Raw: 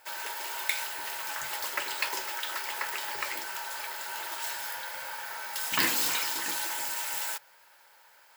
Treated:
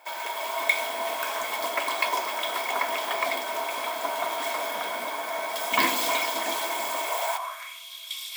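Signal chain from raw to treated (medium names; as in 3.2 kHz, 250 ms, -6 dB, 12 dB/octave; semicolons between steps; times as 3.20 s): ever faster or slower copies 247 ms, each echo -6 st, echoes 3, each echo -6 dB; high-pass sweep 240 Hz -> 3.3 kHz, 6.90–7.85 s; small resonant body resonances 690/1000/2200/3300 Hz, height 16 dB, ringing for 30 ms; trim -2 dB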